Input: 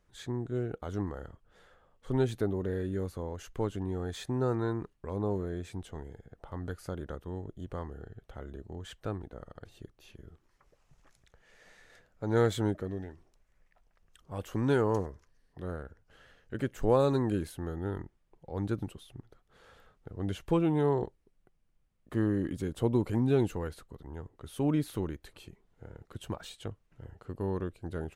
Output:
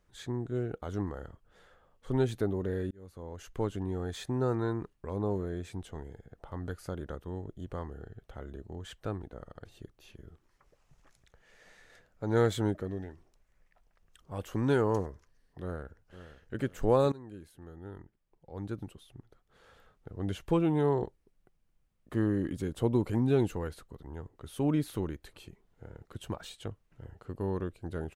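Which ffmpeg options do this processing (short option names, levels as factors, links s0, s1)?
-filter_complex "[0:a]asplit=2[s0][s1];[s1]afade=t=in:st=15.61:d=0.01,afade=t=out:st=16.62:d=0.01,aecho=0:1:510|1020|1530:0.223872|0.0783552|0.0274243[s2];[s0][s2]amix=inputs=2:normalize=0,asplit=3[s3][s4][s5];[s3]atrim=end=2.91,asetpts=PTS-STARTPTS,afade=t=out:st=2.906:d=0.004:c=hsin[s6];[s4]atrim=start=2.91:end=17.12,asetpts=PTS-STARTPTS,afade=t=in:d=0.66,afade=t=out:st=14.206:d=0.004:c=hsin:silence=0.1[s7];[s5]atrim=start=17.12,asetpts=PTS-STARTPTS,afade=t=in:d=3.21:silence=0.1[s8];[s6][s7][s8]concat=n=3:v=0:a=1"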